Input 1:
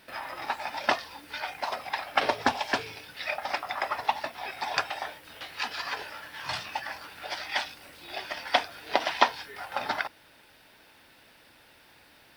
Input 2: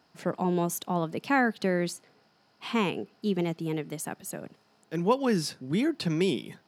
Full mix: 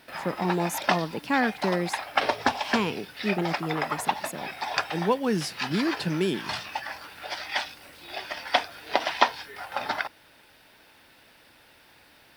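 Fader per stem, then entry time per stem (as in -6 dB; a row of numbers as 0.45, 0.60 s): +1.0, 0.0 dB; 0.00, 0.00 s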